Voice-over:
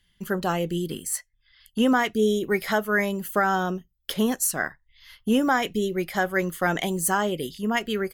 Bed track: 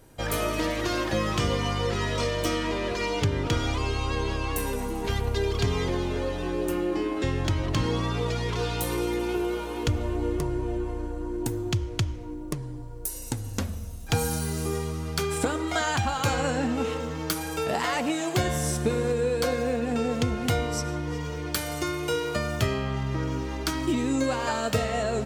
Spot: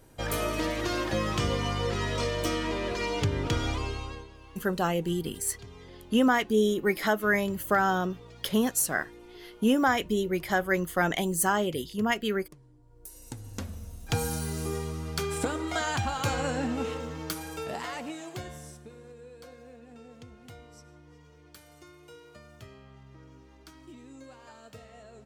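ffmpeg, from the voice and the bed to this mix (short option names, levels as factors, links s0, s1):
-filter_complex "[0:a]adelay=4350,volume=0.794[s0];[1:a]volume=5.96,afade=t=out:st=3.69:d=0.59:silence=0.112202,afade=t=in:st=12.81:d=1.33:silence=0.125893,afade=t=out:st=16.72:d=2.13:silence=0.105925[s1];[s0][s1]amix=inputs=2:normalize=0"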